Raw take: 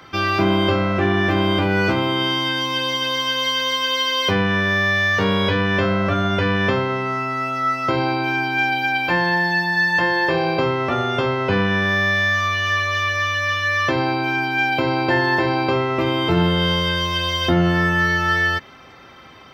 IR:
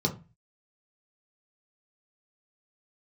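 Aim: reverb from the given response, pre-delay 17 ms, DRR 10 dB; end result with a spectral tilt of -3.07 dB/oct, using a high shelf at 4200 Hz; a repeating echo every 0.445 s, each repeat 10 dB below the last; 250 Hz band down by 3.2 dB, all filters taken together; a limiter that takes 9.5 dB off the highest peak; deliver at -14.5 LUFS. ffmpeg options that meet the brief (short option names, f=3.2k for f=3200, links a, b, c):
-filter_complex "[0:a]equalizer=f=250:t=o:g=-5,highshelf=f=4.2k:g=-6,alimiter=limit=-16.5dB:level=0:latency=1,aecho=1:1:445|890|1335|1780:0.316|0.101|0.0324|0.0104,asplit=2[a][b];[1:a]atrim=start_sample=2205,adelay=17[c];[b][c]afir=irnorm=-1:irlink=0,volume=-18dB[d];[a][d]amix=inputs=2:normalize=0,volume=8dB"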